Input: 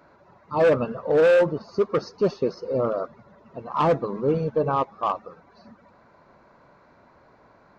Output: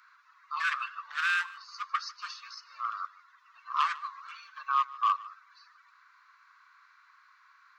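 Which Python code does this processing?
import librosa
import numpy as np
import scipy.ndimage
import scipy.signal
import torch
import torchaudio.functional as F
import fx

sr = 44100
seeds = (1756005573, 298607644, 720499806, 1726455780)

y = scipy.signal.sosfilt(scipy.signal.cheby1(6, 1.0, 1100.0, 'highpass', fs=sr, output='sos'), x)
y = fx.dynamic_eq(y, sr, hz=3200.0, q=0.99, threshold_db=-50.0, ratio=4.0, max_db=5, at=(0.71, 1.21))
y = y + 10.0 ** (-20.0 / 20.0) * np.pad(y, (int(149 * sr / 1000.0), 0))[:len(y)]
y = y * librosa.db_to_amplitude(2.0)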